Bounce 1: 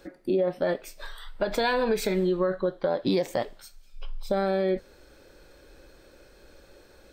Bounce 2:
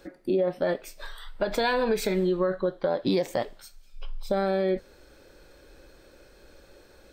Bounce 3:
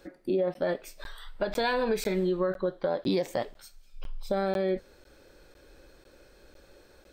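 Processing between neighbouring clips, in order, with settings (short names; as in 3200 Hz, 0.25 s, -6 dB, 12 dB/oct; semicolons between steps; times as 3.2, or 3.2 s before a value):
nothing audible
crackling interface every 0.50 s, samples 512, zero, from 0.54; gain -2.5 dB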